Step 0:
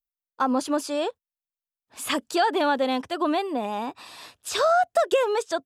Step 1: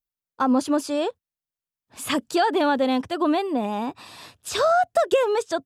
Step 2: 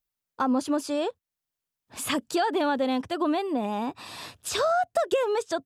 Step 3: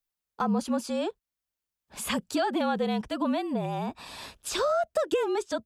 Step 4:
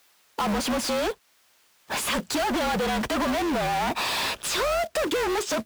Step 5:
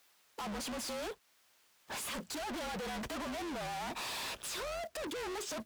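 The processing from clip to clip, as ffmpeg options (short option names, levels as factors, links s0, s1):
-af "equalizer=f=110:t=o:w=2.5:g=10"
-af "acompressor=threshold=0.00891:ratio=1.5,volume=1.58"
-af "afreqshift=-47,volume=0.794"
-filter_complex "[0:a]asplit=2[s0][s1];[s1]highpass=f=720:p=1,volume=89.1,asoftclip=type=tanh:threshold=0.168[s2];[s0][s2]amix=inputs=2:normalize=0,lowpass=f=4100:p=1,volume=0.501,acrusher=bits=3:mode=log:mix=0:aa=0.000001,acompressor=threshold=0.0316:ratio=1.5"
-af "asoftclip=type=hard:threshold=0.0251,volume=0.447"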